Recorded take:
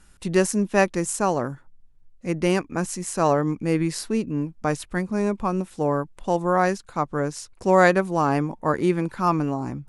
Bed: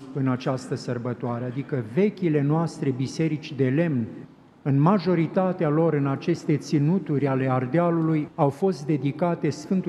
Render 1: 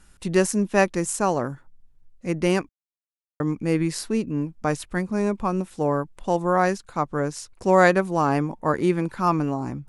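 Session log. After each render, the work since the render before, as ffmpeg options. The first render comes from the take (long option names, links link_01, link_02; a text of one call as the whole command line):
ffmpeg -i in.wav -filter_complex "[0:a]asplit=3[link_01][link_02][link_03];[link_01]atrim=end=2.69,asetpts=PTS-STARTPTS,afade=type=out:start_time=2.686:duration=0.004:curve=hsin[link_04];[link_02]atrim=start=2.69:end=3.4,asetpts=PTS-STARTPTS,volume=0[link_05];[link_03]atrim=start=3.4,asetpts=PTS-STARTPTS,afade=type=in:duration=0.004:curve=hsin[link_06];[link_04][link_05][link_06]concat=n=3:v=0:a=1" out.wav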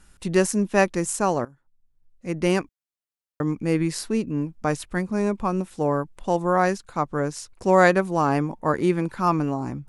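ffmpeg -i in.wav -filter_complex "[0:a]asplit=2[link_01][link_02];[link_01]atrim=end=1.45,asetpts=PTS-STARTPTS,afade=type=out:start_time=1.446:duration=0.004:curve=hsin:silence=0.125893[link_03];[link_02]atrim=start=1.45,asetpts=PTS-STARTPTS,afade=type=in:duration=1.02:curve=qua:silence=0.125893[link_04];[link_03][link_04]concat=n=2:v=0:a=1" out.wav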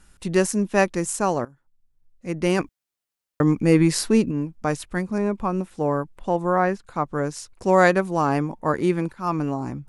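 ffmpeg -i in.wav -filter_complex "[0:a]asplit=3[link_01][link_02][link_03];[link_01]afade=type=out:start_time=2.58:duration=0.02[link_04];[link_02]acontrast=65,afade=type=in:start_time=2.58:duration=0.02,afade=type=out:start_time=4.3:duration=0.02[link_05];[link_03]afade=type=in:start_time=4.3:duration=0.02[link_06];[link_04][link_05][link_06]amix=inputs=3:normalize=0,asettb=1/sr,asplit=3[link_07][link_08][link_09];[link_07]atrim=end=5.184[link_10];[link_08]atrim=start=5.18:end=7.08,asetpts=PTS-STARTPTS,afade=type=in:duration=0.004:curve=qsin,afade=type=out:start_time=1.896:duration=0.004:curve=qsin,acrossover=split=2800[link_11][link_12];[link_12]acompressor=threshold=-52dB:ratio=4:attack=1:release=60[link_13];[link_11][link_13]amix=inputs=2:normalize=0[link_14];[link_09]atrim=start=7.076[link_15];[link_10][link_14]acrossfade=duration=0.004:curve1=hsin:curve2=qsin[link_16];[link_16][link_15]acrossfade=duration=0.004:curve1=qsin:curve2=hsin,asplit=2[link_17][link_18];[link_17]atrim=end=9.13,asetpts=PTS-STARTPTS,afade=type=out:start_time=9.126:duration=0.004:curve=hsin:silence=0.16788[link_19];[link_18]atrim=start=9.13,asetpts=PTS-STARTPTS,afade=type=in:duration=0.41:curve=qsin:silence=0.16788[link_20];[link_19][link_20]concat=n=2:v=0:a=1" out.wav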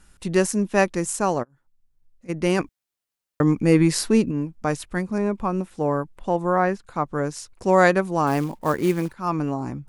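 ffmpeg -i in.wav -filter_complex "[0:a]asplit=3[link_01][link_02][link_03];[link_01]afade=type=out:start_time=1.42:duration=0.02[link_04];[link_02]acompressor=threshold=-44dB:ratio=12:attack=3.2:release=140:knee=1:detection=peak,afade=type=in:start_time=1.42:duration=0.02,afade=type=out:start_time=2.28:duration=0.02[link_05];[link_03]afade=type=in:start_time=2.28:duration=0.02[link_06];[link_04][link_05][link_06]amix=inputs=3:normalize=0,asettb=1/sr,asplit=3[link_07][link_08][link_09];[link_07]atrim=end=8.274[link_10];[link_08]atrim=start=8.27:end=9.14,asetpts=PTS-STARTPTS,afade=type=in:duration=0.004:curve=qsin,afade=type=out:start_time=0.866:duration=0.004:curve=qsin,acrusher=bits=5:mode=log:mix=0:aa=0.000001[link_11];[link_09]atrim=start=9.136[link_12];[link_10][link_11]acrossfade=duration=0.004:curve1=hsin:curve2=qsin[link_13];[link_13][link_12]acrossfade=duration=0.004:curve1=qsin:curve2=hsin" out.wav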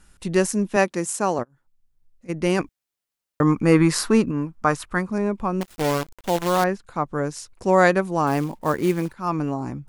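ffmpeg -i in.wav -filter_complex "[0:a]asettb=1/sr,asplit=3[link_01][link_02][link_03];[link_01]atrim=end=0.764[link_04];[link_02]atrim=start=0.76:end=1.39,asetpts=PTS-STARTPTS,afade=type=in:duration=0.004:curve=qsin,afade=type=out:start_time=0.626:duration=0.004:curve=qsin,highpass=160[link_05];[link_03]atrim=start=1.386[link_06];[link_04][link_05]acrossfade=duration=0.004:curve1=hsin:curve2=qsin[link_07];[link_07][link_06]acrossfade=duration=0.004:curve1=qsin:curve2=hsin,asettb=1/sr,asplit=3[link_08][link_09][link_10];[link_08]atrim=end=3.424[link_11];[link_09]atrim=start=3.42:end=5.1,asetpts=PTS-STARTPTS,afade=type=in:duration=0.004:curve=qsin,afade=type=out:start_time=1.676:duration=0.004:curve=qsin,equalizer=frequency=1200:width=1.5:gain=11[link_12];[link_10]atrim=start=5.096[link_13];[link_11][link_12]acrossfade=duration=0.004:curve1=hsin:curve2=qsin[link_14];[link_14][link_13]acrossfade=duration=0.004:curve1=qsin:curve2=hsin,asettb=1/sr,asplit=3[link_15][link_16][link_17];[link_15]atrim=end=5.614[link_18];[link_16]atrim=start=5.61:end=6.64,asetpts=PTS-STARTPTS,afade=type=in:duration=0.004:curve=qsin,afade=type=out:start_time=1.026:duration=0.004:curve=qsin,acrusher=bits=5:dc=4:mix=0:aa=0.000001[link_19];[link_17]atrim=start=6.636[link_20];[link_18][link_19]acrossfade=duration=0.004:curve1=hsin:curve2=qsin[link_21];[link_21][link_20]acrossfade=duration=0.004:curve1=qsin:curve2=hsin" out.wav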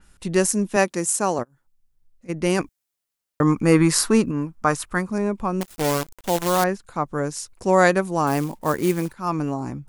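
ffmpeg -i in.wav -af "adynamicequalizer=threshold=0.00708:dfrequency=5300:dqfactor=0.7:tfrequency=5300:tqfactor=0.7:attack=5:release=100:ratio=0.375:range=3.5:mode=boostabove:tftype=highshelf" out.wav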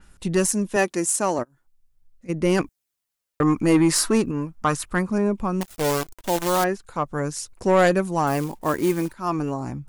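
ffmpeg -i in.wav -af "aphaser=in_gain=1:out_gain=1:delay=3.3:decay=0.28:speed=0.39:type=sinusoidal,asoftclip=type=tanh:threshold=-10dB" out.wav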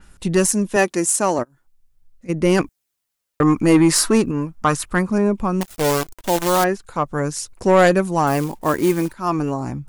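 ffmpeg -i in.wav -af "volume=4dB" out.wav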